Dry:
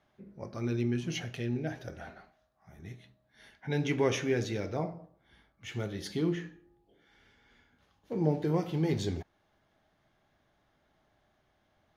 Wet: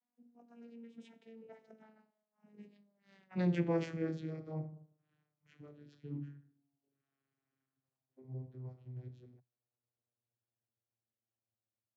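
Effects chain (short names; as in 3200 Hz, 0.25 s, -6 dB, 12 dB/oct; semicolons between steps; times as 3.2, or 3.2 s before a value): vocoder on a gliding note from A3, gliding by -11 st; Doppler pass-by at 3.43, 33 m/s, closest 12 m; gain +3 dB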